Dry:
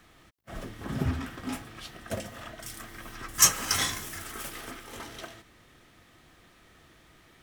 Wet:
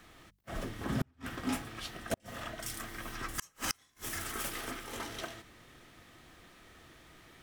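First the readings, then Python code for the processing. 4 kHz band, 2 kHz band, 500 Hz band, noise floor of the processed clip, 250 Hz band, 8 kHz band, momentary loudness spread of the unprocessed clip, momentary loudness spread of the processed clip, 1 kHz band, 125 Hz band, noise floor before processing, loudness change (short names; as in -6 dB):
-9.5 dB, -4.5 dB, -2.0 dB, -69 dBFS, -2.0 dB, -14.5 dB, 22 LU, 20 LU, -4.5 dB, -6.0 dB, -59 dBFS, -10.0 dB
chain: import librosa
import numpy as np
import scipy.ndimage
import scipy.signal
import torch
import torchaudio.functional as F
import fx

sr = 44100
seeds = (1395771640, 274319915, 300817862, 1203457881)

y = fx.hum_notches(x, sr, base_hz=50, count=4)
y = fx.gate_flip(y, sr, shuts_db=-21.0, range_db=-39)
y = y * 10.0 ** (1.0 / 20.0)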